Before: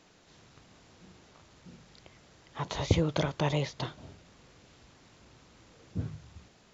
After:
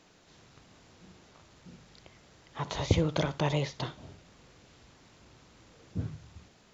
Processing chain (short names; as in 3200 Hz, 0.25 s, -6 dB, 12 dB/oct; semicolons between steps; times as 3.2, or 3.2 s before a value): flutter echo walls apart 10.8 m, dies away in 0.22 s